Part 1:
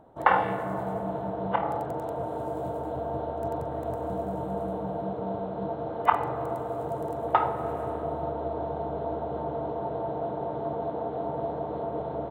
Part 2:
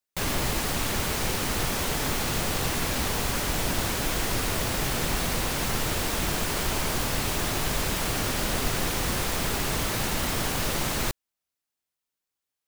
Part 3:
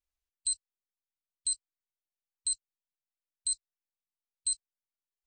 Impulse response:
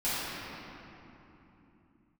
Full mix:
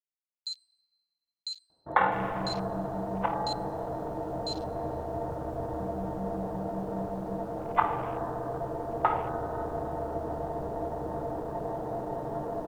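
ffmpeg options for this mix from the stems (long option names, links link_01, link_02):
-filter_complex "[0:a]equalizer=frequency=580:width=0.94:gain=-2,adelay=1700,volume=-2.5dB,asplit=2[link_01][link_02];[link_02]volume=-18.5dB[link_03];[1:a]adelay=1950,volume=-18.5dB[link_04];[2:a]bandpass=frequency=4300:width_type=q:width=4.7:csg=0,acrusher=bits=9:mix=0:aa=0.000001,volume=3dB,asplit=2[link_05][link_06];[link_06]volume=-16dB[link_07];[3:a]atrim=start_sample=2205[link_08];[link_03][link_07]amix=inputs=2:normalize=0[link_09];[link_09][link_08]afir=irnorm=-1:irlink=0[link_10];[link_01][link_04][link_05][link_10]amix=inputs=4:normalize=0,afwtdn=0.00891"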